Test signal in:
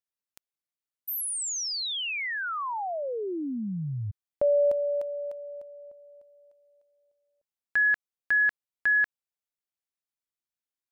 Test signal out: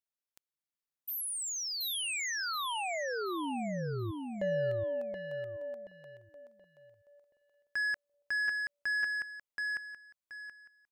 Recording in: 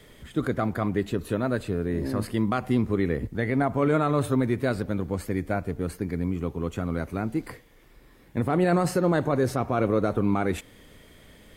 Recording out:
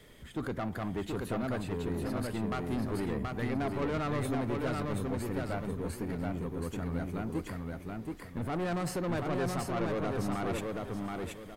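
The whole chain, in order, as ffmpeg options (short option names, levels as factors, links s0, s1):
-af "asoftclip=type=tanh:threshold=0.0562,aecho=1:1:727|1454|2181|2908:0.708|0.205|0.0595|0.0173,volume=0.596"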